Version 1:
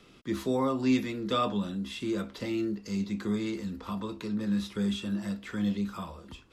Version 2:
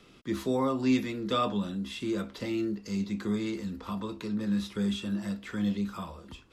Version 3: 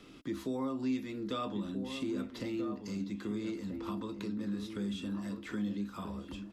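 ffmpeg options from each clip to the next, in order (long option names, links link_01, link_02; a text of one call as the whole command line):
ffmpeg -i in.wav -af anull out.wav
ffmpeg -i in.wav -filter_complex "[0:a]equalizer=frequency=290:width=5:gain=10.5,acompressor=threshold=-41dB:ratio=2,asplit=2[link_01][link_02];[link_02]adelay=1283,volume=-7dB,highshelf=frequency=4000:gain=-28.9[link_03];[link_01][link_03]amix=inputs=2:normalize=0" out.wav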